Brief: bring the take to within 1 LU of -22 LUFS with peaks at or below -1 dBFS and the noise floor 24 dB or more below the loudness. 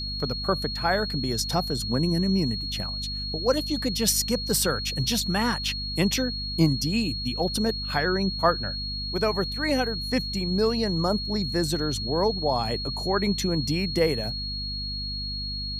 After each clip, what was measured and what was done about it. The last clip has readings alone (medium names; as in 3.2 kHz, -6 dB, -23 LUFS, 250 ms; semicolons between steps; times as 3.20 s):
hum 50 Hz; highest harmonic 250 Hz; hum level -33 dBFS; steady tone 4.3 kHz; tone level -31 dBFS; loudness -25.5 LUFS; peak level -6.5 dBFS; loudness target -22.0 LUFS
-> de-hum 50 Hz, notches 5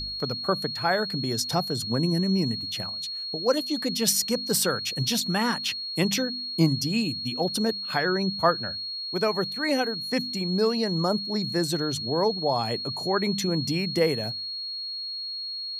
hum not found; steady tone 4.3 kHz; tone level -31 dBFS
-> band-stop 4.3 kHz, Q 30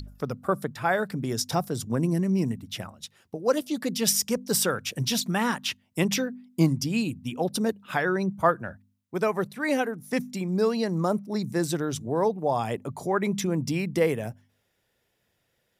steady tone not found; loudness -27.0 LUFS; peak level -7.5 dBFS; loudness target -22.0 LUFS
-> trim +5 dB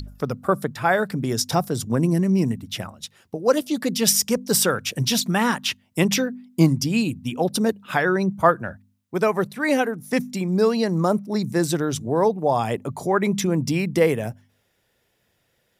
loudness -22.0 LUFS; peak level -2.5 dBFS; noise floor -69 dBFS